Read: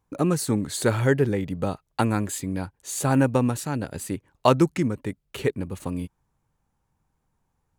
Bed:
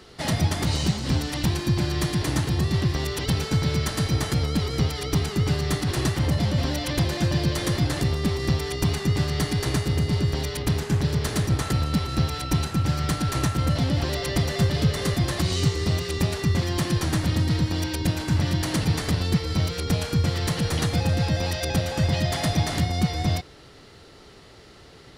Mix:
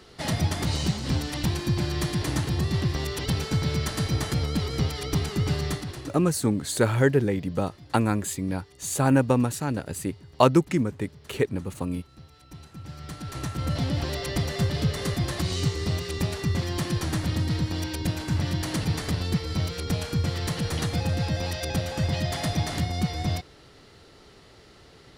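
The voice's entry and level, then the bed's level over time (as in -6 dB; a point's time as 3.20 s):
5.95 s, 0.0 dB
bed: 5.66 s -2.5 dB
6.36 s -25.5 dB
12.29 s -25.5 dB
13.78 s -3.5 dB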